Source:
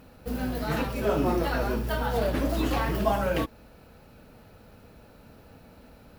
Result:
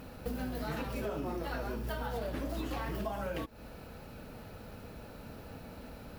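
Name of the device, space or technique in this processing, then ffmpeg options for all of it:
serial compression, leveller first: -af "acompressor=threshold=0.0178:ratio=1.5,acompressor=threshold=0.0126:ratio=6,volume=1.58"

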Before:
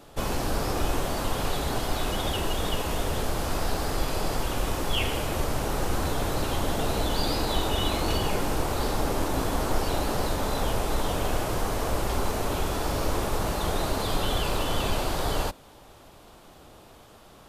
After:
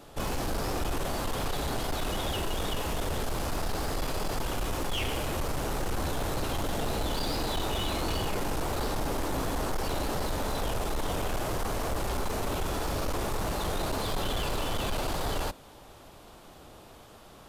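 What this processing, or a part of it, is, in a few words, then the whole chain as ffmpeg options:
saturation between pre-emphasis and de-emphasis: -af "highshelf=f=4600:g=6,asoftclip=type=tanh:threshold=0.0562,highshelf=f=4600:g=-6"

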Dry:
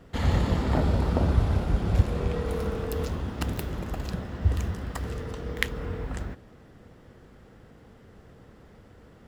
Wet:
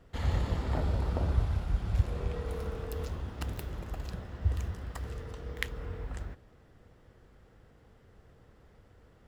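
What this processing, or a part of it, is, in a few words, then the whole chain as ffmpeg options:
low shelf boost with a cut just above: -filter_complex "[0:a]asettb=1/sr,asplit=3[s0][s1][s2];[s0]atrim=end=1.454[s3];[s1]atrim=start=1.45:end=2.03,asetpts=PTS-STARTPTS,afade=t=in:d=0.004:c=qsin,afade=t=out:st=0.576:d=0.004:c=qsin,equalizer=f=440:t=o:w=1.5:g=-6[s4];[s2]atrim=start=2.026[s5];[s3][s4]acrossfade=d=0.004:c1=hsin:c2=qsin[s6];[s6][s5]acrossfade=d=0.004:c1=qsin:c2=hsin,lowshelf=f=74:g=5.5,equalizer=f=220:t=o:w=1.1:g=-5,volume=0.422"

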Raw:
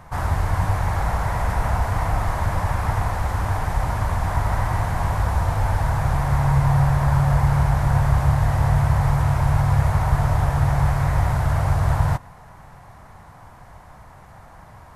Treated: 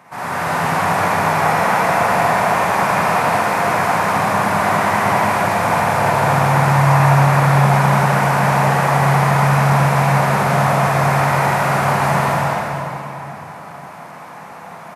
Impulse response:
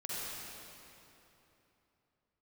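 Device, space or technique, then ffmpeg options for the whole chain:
stadium PA: -filter_complex "[0:a]highpass=f=180:w=0.5412,highpass=f=180:w=1.3066,equalizer=f=2400:t=o:w=0.39:g=6.5,aecho=1:1:195.3|271.1:0.794|0.794[s0];[1:a]atrim=start_sample=2205[s1];[s0][s1]afir=irnorm=-1:irlink=0,volume=1.88"

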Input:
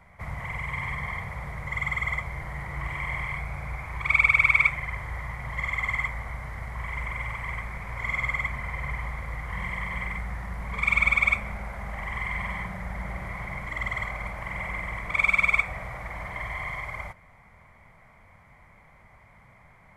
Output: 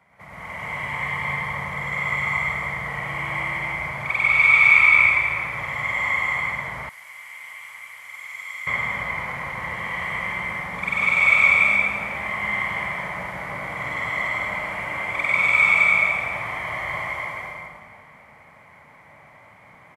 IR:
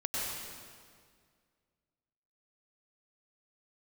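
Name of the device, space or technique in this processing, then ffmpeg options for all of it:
stadium PA: -filter_complex "[0:a]highpass=170,equalizer=f=2900:t=o:w=0.38:g=4,aecho=1:1:209.9|288.6:0.708|0.891[s0];[1:a]atrim=start_sample=2205[s1];[s0][s1]afir=irnorm=-1:irlink=0,asettb=1/sr,asplit=3[s2][s3][s4];[s2]atrim=end=6.894[s5];[s3]atrim=start=6.89:end=8.67,asetpts=PTS-STARTPTS,afade=t=in:d=0.004:c=qsin,afade=t=out:st=1.776:d=0.004:c=qsin,aderivative[s6];[s4]atrim=start=8.666[s7];[s5][s6]acrossfade=d=0.004:c1=hsin:c2=qsin[s8];[s8][s7]acrossfade=d=0.004:c1=qsin:c2=hsin,volume=0.75"

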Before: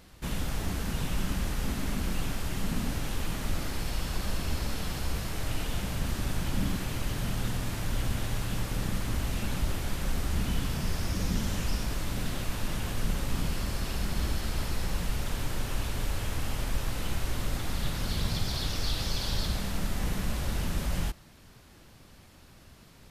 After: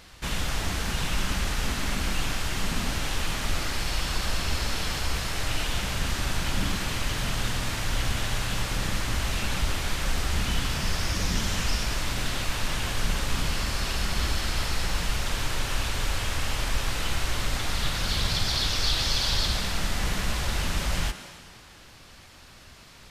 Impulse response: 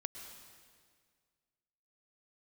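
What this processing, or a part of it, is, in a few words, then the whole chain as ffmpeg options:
filtered reverb send: -filter_complex "[0:a]asplit=2[s0][s1];[s1]highpass=320,lowpass=8900[s2];[1:a]atrim=start_sample=2205[s3];[s2][s3]afir=irnorm=-1:irlink=0,volume=1.58[s4];[s0][s4]amix=inputs=2:normalize=0,equalizer=f=460:t=o:w=2.4:g=-5.5,volume=1.41"

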